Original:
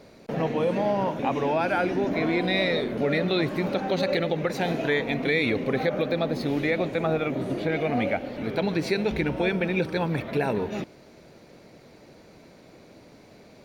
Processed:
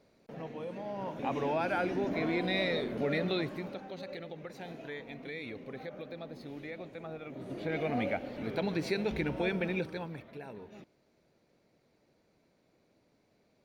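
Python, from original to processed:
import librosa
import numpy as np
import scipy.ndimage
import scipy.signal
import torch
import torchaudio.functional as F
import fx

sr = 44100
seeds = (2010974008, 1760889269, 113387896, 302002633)

y = fx.gain(x, sr, db=fx.line((0.85, -16.0), (1.33, -7.0), (3.31, -7.0), (3.89, -18.0), (7.23, -18.0), (7.77, -7.0), (9.71, -7.0), (10.33, -20.0)))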